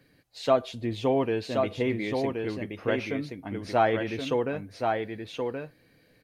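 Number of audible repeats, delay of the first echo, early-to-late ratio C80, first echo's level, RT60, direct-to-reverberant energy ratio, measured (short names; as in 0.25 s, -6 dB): 1, 1.075 s, none, -4.5 dB, none, none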